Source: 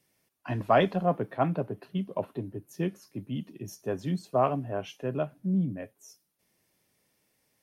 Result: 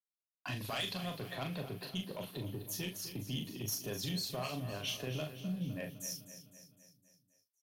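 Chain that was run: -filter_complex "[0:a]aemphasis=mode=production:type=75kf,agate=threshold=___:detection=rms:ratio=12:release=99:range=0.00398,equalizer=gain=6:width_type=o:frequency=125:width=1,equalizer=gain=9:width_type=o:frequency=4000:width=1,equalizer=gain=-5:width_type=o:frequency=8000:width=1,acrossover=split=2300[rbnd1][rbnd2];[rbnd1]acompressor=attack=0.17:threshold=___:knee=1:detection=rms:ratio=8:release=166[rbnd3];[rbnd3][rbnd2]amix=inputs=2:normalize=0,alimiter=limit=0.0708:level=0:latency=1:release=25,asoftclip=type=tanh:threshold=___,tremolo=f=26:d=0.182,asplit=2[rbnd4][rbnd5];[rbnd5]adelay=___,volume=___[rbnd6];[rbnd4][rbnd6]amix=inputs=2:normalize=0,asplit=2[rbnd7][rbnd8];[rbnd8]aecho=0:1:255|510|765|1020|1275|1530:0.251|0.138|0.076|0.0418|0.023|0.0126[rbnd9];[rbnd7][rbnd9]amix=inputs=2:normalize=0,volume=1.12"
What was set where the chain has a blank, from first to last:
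0.00251, 0.02, 0.0251, 39, 0.531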